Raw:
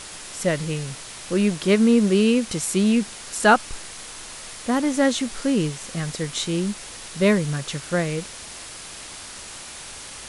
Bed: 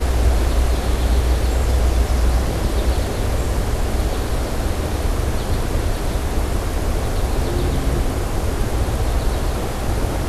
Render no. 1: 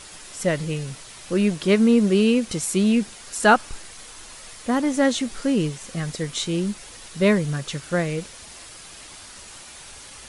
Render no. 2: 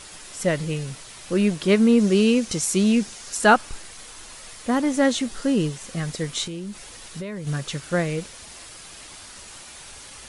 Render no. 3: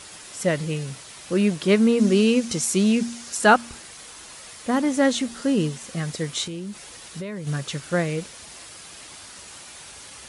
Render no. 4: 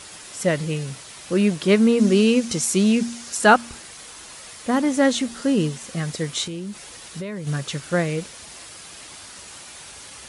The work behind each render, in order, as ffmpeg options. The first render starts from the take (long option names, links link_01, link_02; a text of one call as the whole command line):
ffmpeg -i in.wav -af "afftdn=noise_reduction=6:noise_floor=-39" out.wav
ffmpeg -i in.wav -filter_complex "[0:a]asettb=1/sr,asplit=3[link_01][link_02][link_03];[link_01]atrim=end=1.994[link_04];[link_02]atrim=start=1.99:end=3.37,asetpts=PTS-STARTPTS,afade=type=in:duration=0.004:curve=qsin,afade=type=out:start_time=1.376:duration=0.004:curve=qsin,equalizer=frequency=6000:width_type=o:width=0.73:gain=5.5[link_05];[link_03]atrim=start=3.366[link_06];[link_04][link_05]acrossfade=duration=0.004:curve1=hsin:curve2=qsin[link_07];[link_07][link_06]acrossfade=duration=0.004:curve1=qsin:curve2=hsin,asettb=1/sr,asplit=3[link_08][link_09][link_10];[link_08]atrim=end=5.284[link_11];[link_09]atrim=start=5.28:end=5.76,asetpts=PTS-STARTPTS,afade=type=in:duration=0.004:curve=qsin,afade=type=out:start_time=0.476:duration=0.004:curve=qsin,bandreject=frequency=2300:width=8.8[link_12];[link_10]atrim=start=5.756[link_13];[link_11][link_12]acrossfade=duration=0.004:curve1=hsin:curve2=qsin[link_14];[link_14][link_13]acrossfade=duration=0.004:curve1=qsin:curve2=hsin,asettb=1/sr,asplit=3[link_15][link_16][link_17];[link_15]atrim=end=6.474[link_18];[link_16]atrim=start=6.47:end=7.47,asetpts=PTS-STARTPTS,afade=type=in:duration=0.004:curve=qsin,afade=type=out:start_time=0.996:duration=0.004:curve=qsin,acompressor=threshold=-29dB:ratio=12:attack=3.2:release=140:knee=1:detection=peak[link_19];[link_17]atrim=start=7.466[link_20];[link_18][link_19]acrossfade=duration=0.004:curve1=hsin:curve2=qsin[link_21];[link_21][link_20]acrossfade=duration=0.004:curve1=qsin:curve2=hsin" out.wav
ffmpeg -i in.wav -af "highpass=66,bandreject=frequency=117.6:width_type=h:width=4,bandreject=frequency=235.2:width_type=h:width=4" out.wav
ffmpeg -i in.wav -af "volume=1.5dB" out.wav